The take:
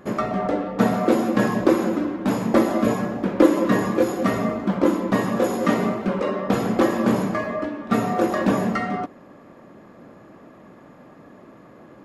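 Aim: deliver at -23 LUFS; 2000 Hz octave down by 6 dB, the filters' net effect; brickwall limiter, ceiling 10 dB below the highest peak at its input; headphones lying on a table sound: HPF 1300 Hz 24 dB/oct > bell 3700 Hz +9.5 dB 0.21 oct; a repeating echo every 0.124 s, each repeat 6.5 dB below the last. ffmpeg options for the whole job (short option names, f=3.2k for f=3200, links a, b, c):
-af "equalizer=f=2k:t=o:g=-7,alimiter=limit=-12dB:level=0:latency=1,highpass=f=1.3k:w=0.5412,highpass=f=1.3k:w=1.3066,equalizer=f=3.7k:t=o:w=0.21:g=9.5,aecho=1:1:124|248|372|496|620|744:0.473|0.222|0.105|0.0491|0.0231|0.0109,volume=13.5dB"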